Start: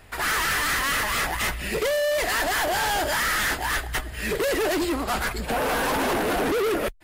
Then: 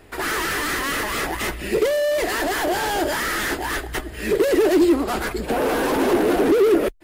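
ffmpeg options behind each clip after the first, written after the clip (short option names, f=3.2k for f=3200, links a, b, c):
-af "equalizer=f=350:w=1.3:g=12,volume=-1dB"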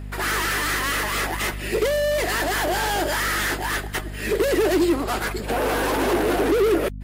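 -af "lowshelf=f=410:g=-8,aeval=exprs='val(0)+0.0224*(sin(2*PI*50*n/s)+sin(2*PI*2*50*n/s)/2+sin(2*PI*3*50*n/s)/3+sin(2*PI*4*50*n/s)/4+sin(2*PI*5*50*n/s)/5)':c=same,volume=1dB"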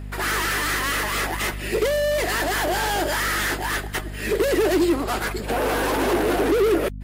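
-af "asoftclip=type=hard:threshold=-12.5dB"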